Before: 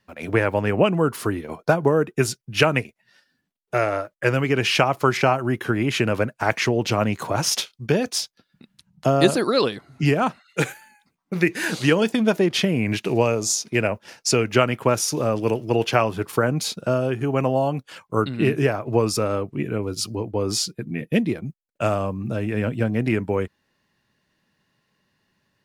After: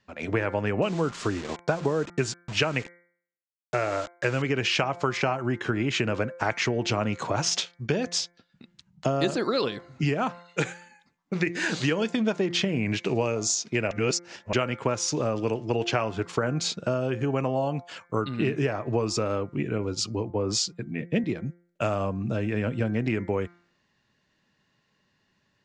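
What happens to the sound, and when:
0.82–4.42 s: word length cut 6-bit, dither none
13.91–14.53 s: reverse
20.30–21.24 s: three bands expanded up and down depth 40%
whole clip: elliptic low-pass 7.4 kHz, stop band 80 dB; de-hum 173.8 Hz, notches 13; compression 3:1, threshold -23 dBFS

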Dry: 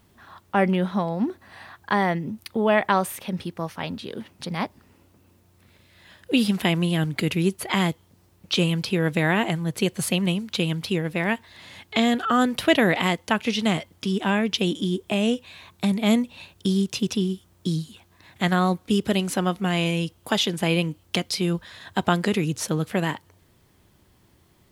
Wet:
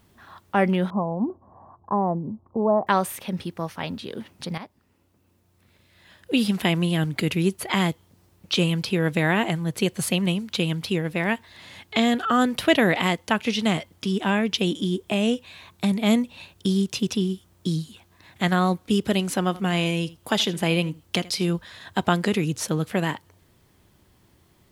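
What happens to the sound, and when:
0.90–2.87 s: Chebyshev low-pass 1.1 kHz, order 5
4.58–6.70 s: fade in, from -13.5 dB
19.38–21.51 s: delay 80 ms -19.5 dB

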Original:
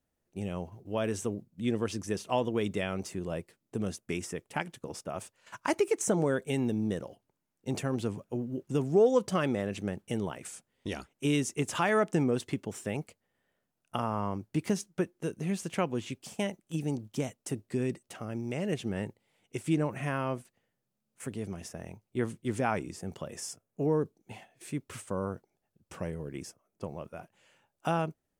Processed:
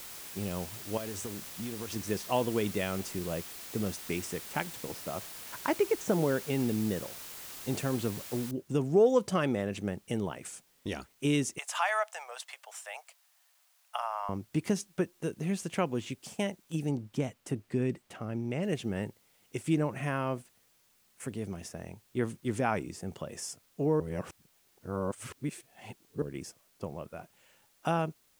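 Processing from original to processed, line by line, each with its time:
0.97–1.96 s: compression 12:1, threshold -34 dBFS
4.94–6.80 s: distance through air 140 m
8.51 s: noise floor step -45 dB -68 dB
11.58–14.29 s: steep high-pass 640 Hz 48 dB/octave
16.89–18.63 s: tone controls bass +2 dB, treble -7 dB
24.00–26.22 s: reverse

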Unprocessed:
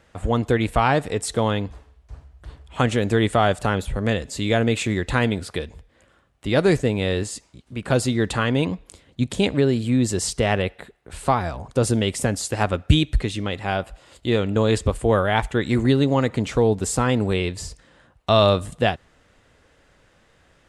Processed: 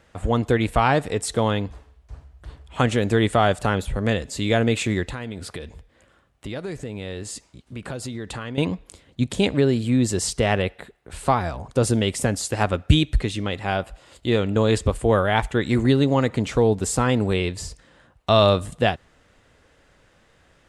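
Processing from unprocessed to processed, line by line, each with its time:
5.03–8.58 s: compression 5:1, threshold -29 dBFS

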